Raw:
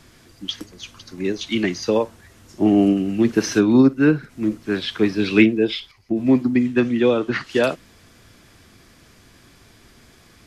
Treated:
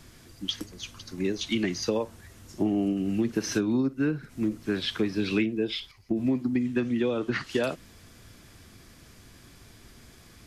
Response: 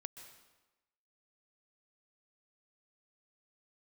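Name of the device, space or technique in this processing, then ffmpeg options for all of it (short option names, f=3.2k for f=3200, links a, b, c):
ASMR close-microphone chain: -af "lowshelf=f=190:g=5.5,acompressor=threshold=-19dB:ratio=5,highshelf=f=6.1k:g=5.5,volume=-4dB"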